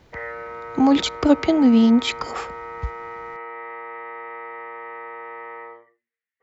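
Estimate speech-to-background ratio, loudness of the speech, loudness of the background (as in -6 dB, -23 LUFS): 17.0 dB, -18.0 LUFS, -35.0 LUFS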